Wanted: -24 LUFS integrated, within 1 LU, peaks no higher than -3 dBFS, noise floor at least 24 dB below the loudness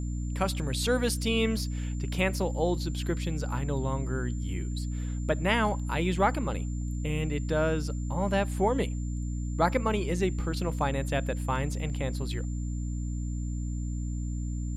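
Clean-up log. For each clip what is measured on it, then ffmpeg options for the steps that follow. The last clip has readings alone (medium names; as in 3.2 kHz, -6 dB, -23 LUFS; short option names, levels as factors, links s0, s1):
hum 60 Hz; highest harmonic 300 Hz; hum level -30 dBFS; steady tone 7.2 kHz; tone level -51 dBFS; loudness -30.0 LUFS; peak level -11.5 dBFS; loudness target -24.0 LUFS
-> -af "bandreject=f=60:t=h:w=4,bandreject=f=120:t=h:w=4,bandreject=f=180:t=h:w=4,bandreject=f=240:t=h:w=4,bandreject=f=300:t=h:w=4"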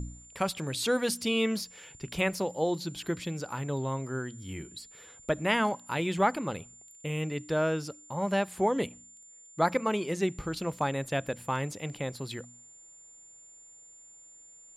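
hum not found; steady tone 7.2 kHz; tone level -51 dBFS
-> -af "bandreject=f=7200:w=30"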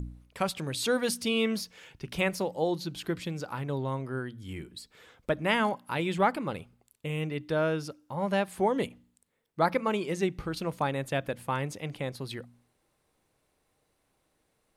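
steady tone not found; loudness -31.0 LUFS; peak level -12.0 dBFS; loudness target -24.0 LUFS
-> -af "volume=2.24"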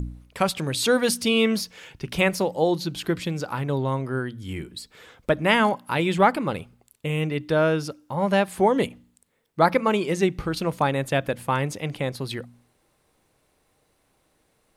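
loudness -24.0 LUFS; peak level -5.0 dBFS; noise floor -68 dBFS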